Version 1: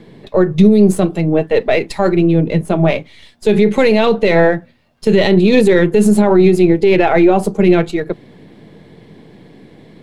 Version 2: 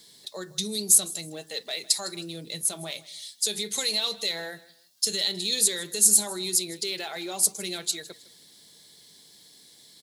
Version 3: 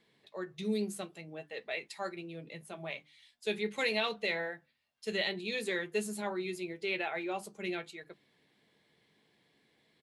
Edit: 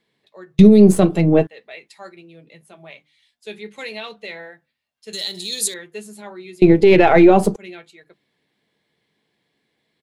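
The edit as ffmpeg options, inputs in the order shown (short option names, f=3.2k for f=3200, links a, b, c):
-filter_complex "[0:a]asplit=2[a][b];[2:a]asplit=4[c][d][e][f];[c]atrim=end=0.592[g];[a]atrim=start=0.588:end=1.472[h];[d]atrim=start=1.468:end=5.132[i];[1:a]atrim=start=5.128:end=5.742[j];[e]atrim=start=5.738:end=6.622[k];[b]atrim=start=6.618:end=7.562[l];[f]atrim=start=7.558[m];[g][h]acrossfade=d=0.004:c1=hsin:c2=hsin[n];[n][i]acrossfade=d=0.004:c1=hsin:c2=hsin[o];[o][j]acrossfade=d=0.004:c1=hsin:c2=hsin[p];[p][k]acrossfade=d=0.004:c1=hsin:c2=hsin[q];[q][l]acrossfade=d=0.004:c1=hsin:c2=hsin[r];[r][m]acrossfade=d=0.004:c1=hsin:c2=hsin"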